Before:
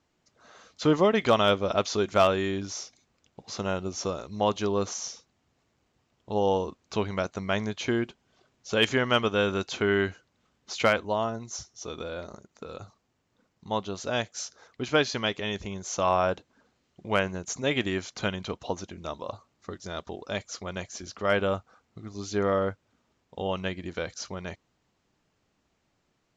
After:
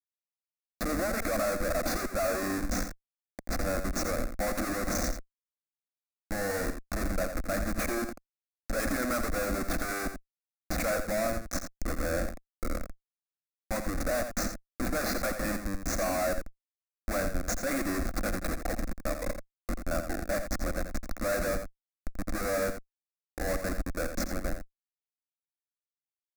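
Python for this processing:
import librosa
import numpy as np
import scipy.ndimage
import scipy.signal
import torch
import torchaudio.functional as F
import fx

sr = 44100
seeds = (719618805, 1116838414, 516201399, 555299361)

p1 = scipy.signal.sosfilt(scipy.signal.butter(2, 340.0, 'highpass', fs=sr, output='sos'), x)
p2 = fx.peak_eq(p1, sr, hz=5600.0, db=-4.0, octaves=0.45)
p3 = fx.notch(p2, sr, hz=3400.0, q=26.0)
p4 = fx.rider(p3, sr, range_db=3, speed_s=2.0)
p5 = p3 + (p4 * 10.0 ** (-2.5 / 20.0))
p6 = fx.schmitt(p5, sr, flips_db=-29.0)
p7 = fx.fixed_phaser(p6, sr, hz=620.0, stages=8)
y = p7 + fx.echo_single(p7, sr, ms=85, db=-8.5, dry=0)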